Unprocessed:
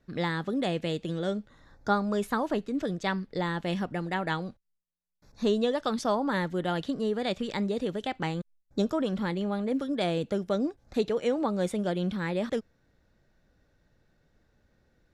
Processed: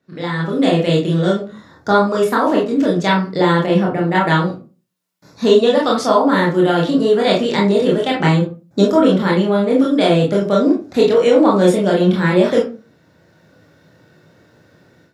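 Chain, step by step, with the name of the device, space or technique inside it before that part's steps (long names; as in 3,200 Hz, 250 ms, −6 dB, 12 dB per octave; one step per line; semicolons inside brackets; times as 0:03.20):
far laptop microphone (convolution reverb RT60 0.35 s, pre-delay 22 ms, DRR −3.5 dB; high-pass filter 110 Hz 24 dB per octave; automatic gain control gain up to 15 dB)
0:03.66–0:04.15: high-shelf EQ 2,100 Hz −10 dB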